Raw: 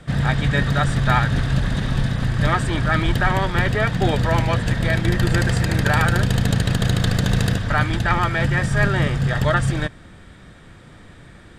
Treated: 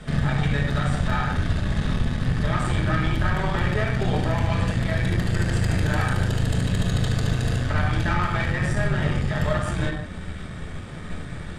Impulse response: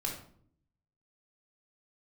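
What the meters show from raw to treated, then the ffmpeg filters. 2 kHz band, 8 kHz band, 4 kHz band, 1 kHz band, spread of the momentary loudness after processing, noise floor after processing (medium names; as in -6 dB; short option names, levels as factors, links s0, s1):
-6.0 dB, -5.5 dB, -6.0 dB, -6.0 dB, 12 LU, -35 dBFS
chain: -filter_complex "[0:a]acompressor=threshold=0.0398:ratio=8[s0];[1:a]atrim=start_sample=2205,afade=t=out:st=0.16:d=0.01,atrim=end_sample=7497,asetrate=23814,aresample=44100[s1];[s0][s1]afir=irnorm=-1:irlink=0,aeval=exprs='0.355*(cos(1*acos(clip(val(0)/0.355,-1,1)))-cos(1*PI/2))+0.02*(cos(8*acos(clip(val(0)/0.355,-1,1)))-cos(8*PI/2))':c=same"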